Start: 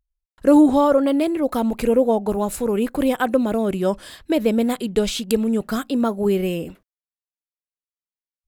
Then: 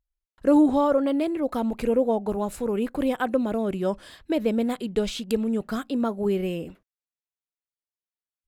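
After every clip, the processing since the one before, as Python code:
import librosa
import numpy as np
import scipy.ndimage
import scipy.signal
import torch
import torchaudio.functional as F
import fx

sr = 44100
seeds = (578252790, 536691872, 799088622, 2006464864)

y = fx.high_shelf(x, sr, hz=6700.0, db=-8.0)
y = F.gain(torch.from_numpy(y), -5.0).numpy()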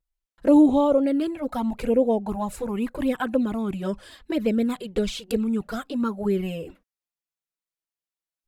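y = fx.env_flanger(x, sr, rest_ms=6.1, full_db=-17.5)
y = F.gain(torch.from_numpy(y), 3.0).numpy()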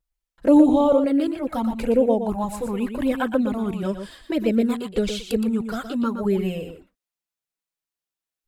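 y = x + 10.0 ** (-8.5 / 20.0) * np.pad(x, (int(119 * sr / 1000.0), 0))[:len(x)]
y = F.gain(torch.from_numpy(y), 1.5).numpy()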